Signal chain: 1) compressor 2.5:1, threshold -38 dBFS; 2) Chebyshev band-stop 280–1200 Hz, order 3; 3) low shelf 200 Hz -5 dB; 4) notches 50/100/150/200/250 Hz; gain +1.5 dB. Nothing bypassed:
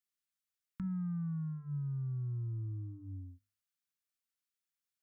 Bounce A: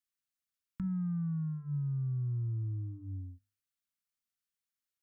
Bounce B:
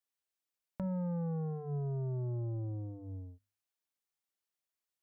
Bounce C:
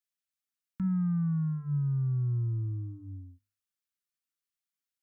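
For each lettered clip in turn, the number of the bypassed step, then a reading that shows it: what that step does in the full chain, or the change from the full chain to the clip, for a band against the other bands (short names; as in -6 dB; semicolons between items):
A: 3, loudness change +3.5 LU; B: 2, crest factor change +4.0 dB; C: 1, mean gain reduction 6.5 dB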